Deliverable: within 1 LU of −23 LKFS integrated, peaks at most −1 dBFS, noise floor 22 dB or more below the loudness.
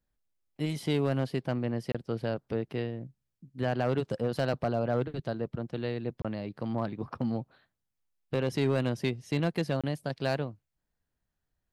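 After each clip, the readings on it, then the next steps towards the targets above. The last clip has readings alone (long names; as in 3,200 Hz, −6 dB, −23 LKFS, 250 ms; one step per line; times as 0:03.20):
share of clipped samples 0.4%; peaks flattened at −19.5 dBFS; number of dropouts 3; longest dropout 26 ms; integrated loudness −32.0 LKFS; sample peak −19.5 dBFS; target loudness −23.0 LKFS
→ clipped peaks rebuilt −19.5 dBFS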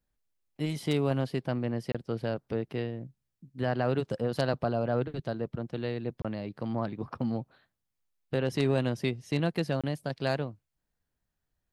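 share of clipped samples 0.0%; number of dropouts 3; longest dropout 26 ms
→ repair the gap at 0:01.92/0:06.22/0:09.81, 26 ms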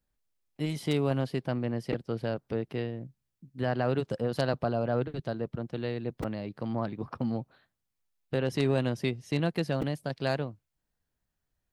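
number of dropouts 0; integrated loudness −32.0 LKFS; sample peak −11.0 dBFS; target loudness −23.0 LKFS
→ level +9 dB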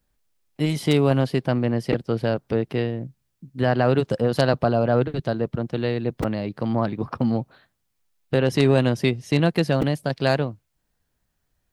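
integrated loudness −23.0 LKFS; sample peak −2.0 dBFS; background noise floor −74 dBFS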